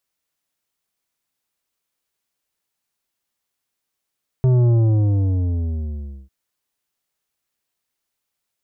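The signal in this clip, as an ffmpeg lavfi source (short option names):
-f lavfi -i "aevalsrc='0.224*clip((1.85-t)/1.61,0,1)*tanh(2.99*sin(2*PI*130*1.85/log(65/130)*(exp(log(65/130)*t/1.85)-1)))/tanh(2.99)':d=1.85:s=44100"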